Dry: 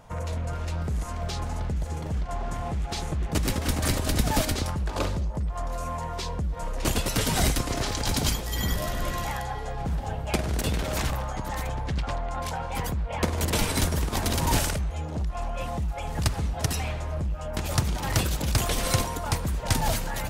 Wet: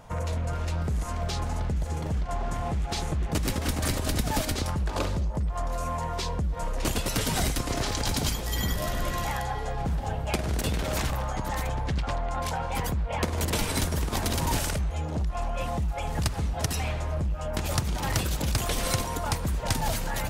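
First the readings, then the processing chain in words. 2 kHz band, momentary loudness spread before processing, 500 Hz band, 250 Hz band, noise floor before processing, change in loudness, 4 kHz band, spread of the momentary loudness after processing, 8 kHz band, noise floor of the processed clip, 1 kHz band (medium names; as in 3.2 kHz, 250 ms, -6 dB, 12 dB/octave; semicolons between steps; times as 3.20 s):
-1.0 dB, 7 LU, -0.5 dB, -1.0 dB, -34 dBFS, -1.0 dB, -1.5 dB, 4 LU, -1.5 dB, -33 dBFS, 0.0 dB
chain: compression 2.5:1, threshold -27 dBFS, peak gain reduction 7 dB; trim +2 dB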